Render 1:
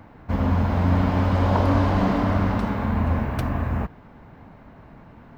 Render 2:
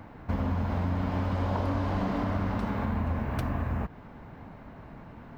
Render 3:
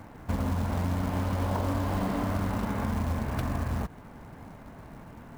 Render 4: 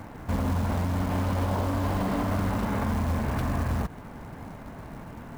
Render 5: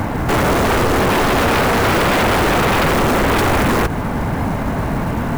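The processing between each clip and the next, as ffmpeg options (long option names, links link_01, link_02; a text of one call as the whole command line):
ffmpeg -i in.wav -af "acompressor=threshold=-27dB:ratio=4" out.wav
ffmpeg -i in.wav -af "acrusher=bits=5:mode=log:mix=0:aa=0.000001" out.wav
ffmpeg -i in.wav -af "alimiter=level_in=0.5dB:limit=-24dB:level=0:latency=1:release=18,volume=-0.5dB,volume=5dB" out.wav
ffmpeg -i in.wav -af "aeval=exprs='0.112*sin(PI/2*3.55*val(0)/0.112)':channel_layout=same,volume=7.5dB" out.wav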